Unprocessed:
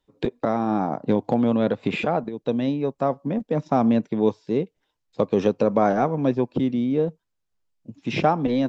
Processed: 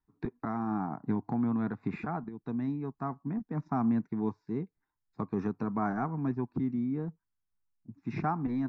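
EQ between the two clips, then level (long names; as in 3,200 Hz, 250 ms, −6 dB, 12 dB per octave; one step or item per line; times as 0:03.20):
high-frequency loss of the air 120 metres
high-shelf EQ 4,000 Hz −8 dB
phaser with its sweep stopped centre 1,300 Hz, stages 4
−5.5 dB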